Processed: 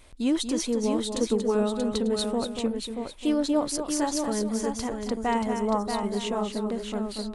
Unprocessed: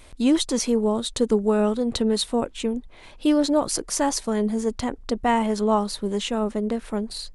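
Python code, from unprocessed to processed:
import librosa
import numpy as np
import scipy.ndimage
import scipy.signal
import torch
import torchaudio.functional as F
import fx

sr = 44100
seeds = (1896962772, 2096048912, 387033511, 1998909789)

y = fx.spec_box(x, sr, start_s=5.44, length_s=0.43, low_hz=2200.0, high_hz=5200.0, gain_db=-15)
y = fx.echo_multitap(y, sr, ms=(235, 632, 894), db=(-7.5, -6.0, -15.5))
y = y * librosa.db_to_amplitude(-5.5)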